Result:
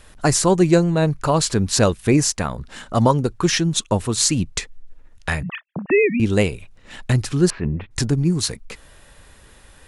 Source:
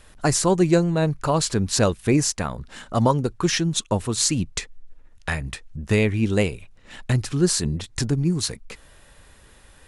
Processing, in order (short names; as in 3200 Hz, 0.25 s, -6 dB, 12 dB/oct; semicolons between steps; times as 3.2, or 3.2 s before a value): 5.43–6.2 sine-wave speech; 7.5–7.91 Chebyshev low-pass 2500 Hz, order 4; gain +3 dB